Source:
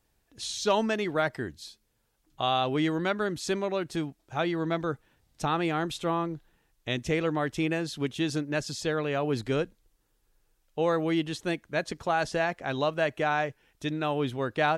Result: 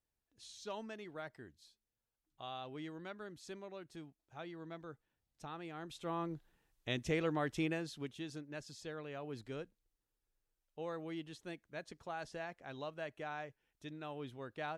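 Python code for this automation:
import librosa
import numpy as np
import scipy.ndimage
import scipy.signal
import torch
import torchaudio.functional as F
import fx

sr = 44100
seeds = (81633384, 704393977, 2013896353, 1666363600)

y = fx.gain(x, sr, db=fx.line((5.72, -19.5), (6.33, -7.5), (7.62, -7.5), (8.28, -17.0)))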